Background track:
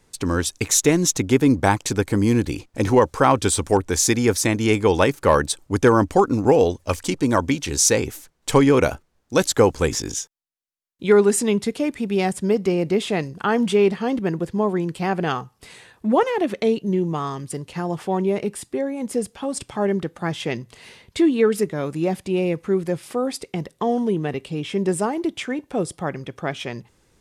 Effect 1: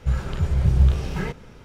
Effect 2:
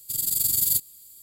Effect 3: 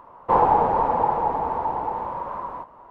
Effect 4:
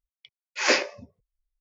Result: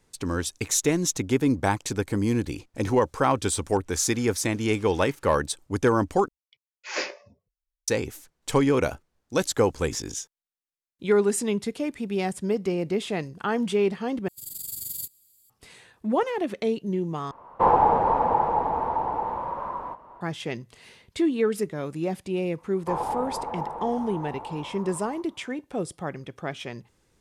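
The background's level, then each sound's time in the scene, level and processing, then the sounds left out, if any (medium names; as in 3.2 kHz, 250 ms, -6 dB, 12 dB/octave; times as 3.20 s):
background track -6 dB
3.83 s: add 1 -12 dB, fades 0.10 s + high-pass 1.5 kHz
6.28 s: replace with 4 -8.5 dB + band-stop 250 Hz, Q 6.1
14.28 s: replace with 2 -12 dB
17.31 s: replace with 3 -1 dB
22.58 s: add 3 -11.5 dB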